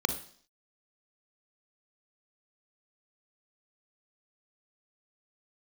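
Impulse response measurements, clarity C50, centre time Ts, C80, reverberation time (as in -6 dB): 10.0 dB, 11 ms, 14.5 dB, 0.55 s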